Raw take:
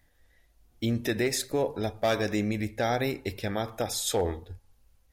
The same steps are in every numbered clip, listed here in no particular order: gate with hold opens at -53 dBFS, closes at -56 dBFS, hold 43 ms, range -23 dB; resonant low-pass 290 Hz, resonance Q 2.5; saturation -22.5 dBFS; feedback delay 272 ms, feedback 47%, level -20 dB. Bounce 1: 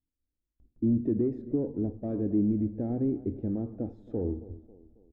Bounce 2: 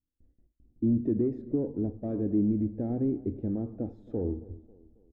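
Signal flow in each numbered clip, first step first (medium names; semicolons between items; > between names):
feedback delay > saturation > resonant low-pass > gate with hold; saturation > feedback delay > gate with hold > resonant low-pass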